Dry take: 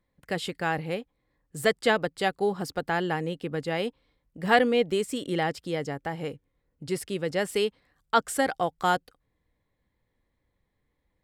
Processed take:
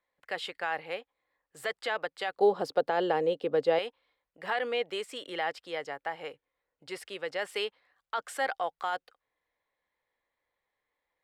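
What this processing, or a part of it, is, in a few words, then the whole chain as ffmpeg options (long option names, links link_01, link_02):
DJ mixer with the lows and highs turned down: -filter_complex "[0:a]acrossover=split=500 4300:gain=0.0631 1 0.251[link_01][link_02][link_03];[link_01][link_02][link_03]amix=inputs=3:normalize=0,alimiter=limit=-21dB:level=0:latency=1:release=29,asettb=1/sr,asplit=3[link_04][link_05][link_06];[link_04]atrim=end=2.374[link_07];[link_05]atrim=start=2.37:end=3.79,asetpts=PTS-STARTPTS,afade=type=in:duration=0.004:curve=qsin,afade=type=out:start_time=1.416:duration=0.004:curve=qsin,equalizer=frequency=125:width_type=o:width=1:gain=10,equalizer=frequency=250:width_type=o:width=1:gain=10,equalizer=frequency=500:width_type=o:width=1:gain=11,equalizer=frequency=2000:width_type=o:width=1:gain=-5,equalizer=frequency=4000:width_type=o:width=1:gain=4[link_08];[link_06]atrim=start=3.786[link_09];[link_07][link_08]acrossfade=duration=0.004:curve1=hsin:curve2=qsin[link_10];[link_10][link_09]acrossfade=duration=0.004:curve1=qsin:curve2=hsin"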